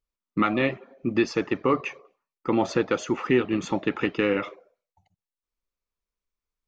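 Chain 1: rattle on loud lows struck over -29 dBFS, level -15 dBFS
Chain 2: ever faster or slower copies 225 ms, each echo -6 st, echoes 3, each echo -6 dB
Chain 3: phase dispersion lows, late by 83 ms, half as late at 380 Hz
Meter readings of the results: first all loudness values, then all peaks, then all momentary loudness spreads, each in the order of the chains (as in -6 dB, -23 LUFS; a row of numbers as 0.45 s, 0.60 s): -25.0 LUFS, -26.5 LUFS, -26.0 LUFS; -7.5 dBFS, -9.5 dBFS, -9.0 dBFS; 8 LU, 9 LU, 8 LU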